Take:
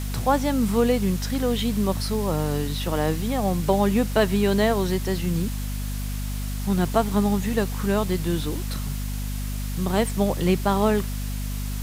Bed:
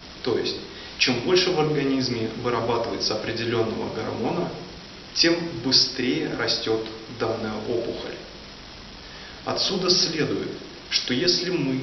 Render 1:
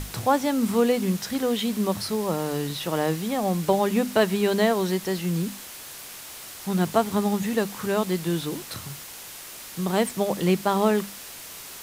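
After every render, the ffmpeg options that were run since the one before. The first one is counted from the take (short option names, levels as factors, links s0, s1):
-af "bandreject=f=50:t=h:w=6,bandreject=f=100:t=h:w=6,bandreject=f=150:t=h:w=6,bandreject=f=200:t=h:w=6,bandreject=f=250:t=h:w=6"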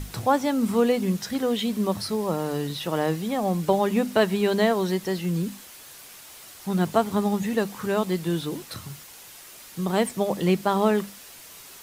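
-af "afftdn=nr=6:nf=-41"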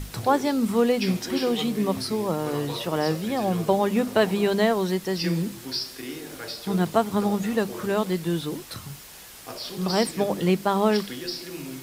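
-filter_complex "[1:a]volume=0.251[s0];[0:a][s0]amix=inputs=2:normalize=0"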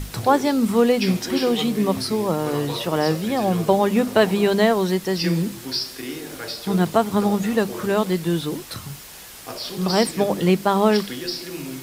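-af "volume=1.58,alimiter=limit=0.708:level=0:latency=1"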